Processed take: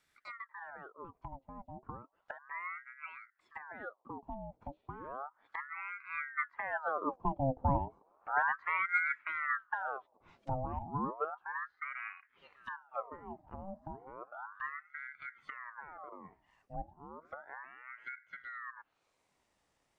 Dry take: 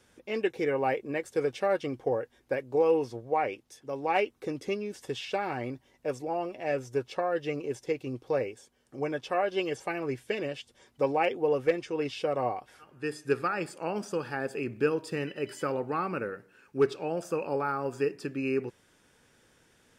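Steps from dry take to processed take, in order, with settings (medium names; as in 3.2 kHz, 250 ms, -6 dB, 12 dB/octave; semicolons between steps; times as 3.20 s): Doppler pass-by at 7.97 s, 29 m/s, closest 25 m; low-pass that closes with the level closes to 300 Hz, closed at -47.5 dBFS; ring modulator with a swept carrier 1.1 kHz, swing 65%, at 0.33 Hz; trim +10.5 dB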